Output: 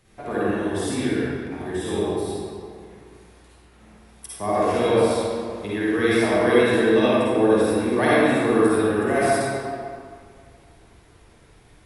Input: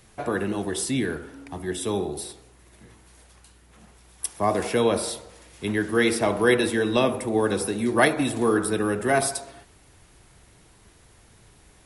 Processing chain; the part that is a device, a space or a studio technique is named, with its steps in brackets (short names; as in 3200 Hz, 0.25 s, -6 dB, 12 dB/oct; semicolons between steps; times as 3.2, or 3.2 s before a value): swimming-pool hall (reverb RT60 2.2 s, pre-delay 45 ms, DRR -8.5 dB; high shelf 4700 Hz -6.5 dB); gain -6 dB